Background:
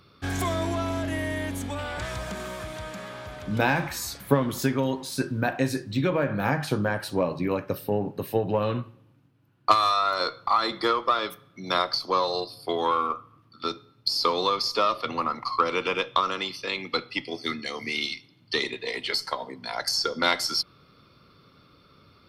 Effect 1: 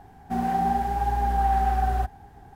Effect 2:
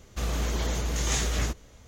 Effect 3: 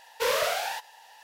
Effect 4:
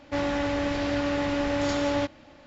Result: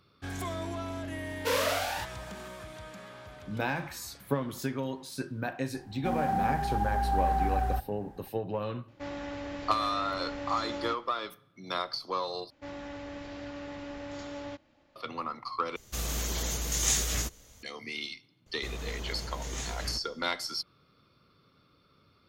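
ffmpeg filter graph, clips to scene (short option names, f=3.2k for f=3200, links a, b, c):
-filter_complex "[4:a]asplit=2[a][b];[2:a]asplit=2[c][d];[0:a]volume=-8.5dB[e];[c]crystalizer=i=3:c=0[f];[e]asplit=3[g][h][i];[g]atrim=end=12.504[j];[b]atrim=end=2.46,asetpts=PTS-STARTPTS,volume=-14.5dB[k];[h]atrim=start=14.956:end=15.764[l];[f]atrim=end=1.87,asetpts=PTS-STARTPTS,volume=-6dB[m];[i]atrim=start=17.626[n];[3:a]atrim=end=1.23,asetpts=PTS-STARTPTS,volume=-2.5dB,afade=t=in:d=0.004:c=hsin,afade=t=out:st=1.226:d=0.004:c=hsin,adelay=1250[o];[1:a]atrim=end=2.55,asetpts=PTS-STARTPTS,volume=-5dB,afade=t=in:d=0.004:c=hsin,afade=t=out:st=2.546:d=0.004:c=hsin,adelay=5740[p];[a]atrim=end=2.46,asetpts=PTS-STARTPTS,volume=-11.5dB,afade=t=in:d=0.004:c=hsin,afade=t=out:st=2.456:d=0.004:c=hsin,adelay=8880[q];[d]atrim=end=1.87,asetpts=PTS-STARTPTS,volume=-10dB,afade=t=in:d=0.004:c=hsin,afade=t=out:st=1.866:d=0.004:c=hsin,adelay=18460[r];[j][k]acrossfade=d=0.004:c1=hsin:c2=hsin[s];[s][l]acrossfade=d=0.004:c1=hsin:c2=hsin[t];[t][m]acrossfade=d=0.004:c1=hsin:c2=hsin[u];[u][n]acrossfade=d=0.004:c1=hsin:c2=hsin[v];[v][o][p][q][r]amix=inputs=5:normalize=0"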